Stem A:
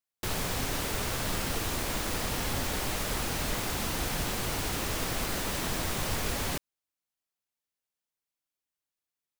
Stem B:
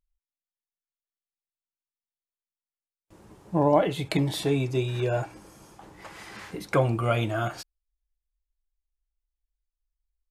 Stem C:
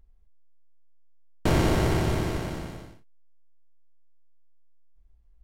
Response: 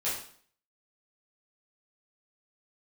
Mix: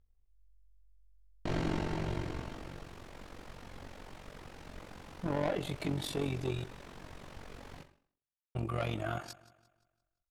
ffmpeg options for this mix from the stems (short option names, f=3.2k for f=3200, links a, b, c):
-filter_complex "[0:a]aemphasis=mode=reproduction:type=75fm,adelay=1250,volume=-15.5dB,asplit=2[a][b];[b]volume=-12dB[c];[1:a]asoftclip=type=tanh:threshold=-22dB,adelay=1700,volume=-3.5dB,asplit=3[d][e][f];[d]atrim=end=6.64,asetpts=PTS-STARTPTS,afade=t=out:st=6.636:d=0.004:c=hsin[g];[e]atrim=start=6.64:end=8.55,asetpts=PTS-STARTPTS,volume=0[h];[f]atrim=start=8.55,asetpts=PTS-STARTPTS,afade=t=in:d=0.004:c=hsin[i];[g][h][i]concat=n=3:v=0:a=1,asplit=2[j][k];[k]volume=-19dB[l];[2:a]lowpass=5.6k,flanger=delay=15.5:depth=3.8:speed=0.82,volume=-7.5dB,asplit=2[m][n];[n]volume=-10.5dB[o];[3:a]atrim=start_sample=2205[p];[c][o]amix=inputs=2:normalize=0[q];[q][p]afir=irnorm=-1:irlink=0[r];[l]aecho=0:1:173|346|519|692|865|1038:1|0.41|0.168|0.0689|0.0283|0.0116[s];[a][j][m][r][s]amix=inputs=5:normalize=0,bandreject=f=50:t=h:w=6,bandreject=f=100:t=h:w=6,tremolo=f=46:d=0.75"